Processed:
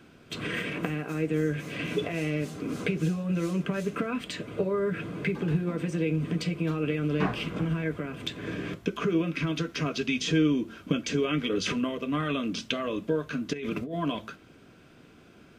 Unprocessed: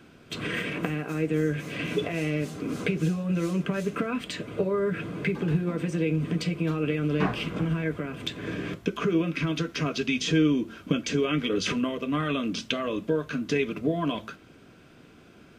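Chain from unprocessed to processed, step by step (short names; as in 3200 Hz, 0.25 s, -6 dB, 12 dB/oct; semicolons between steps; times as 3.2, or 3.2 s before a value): 13.53–13.95 negative-ratio compressor -32 dBFS, ratio -1; gain -1.5 dB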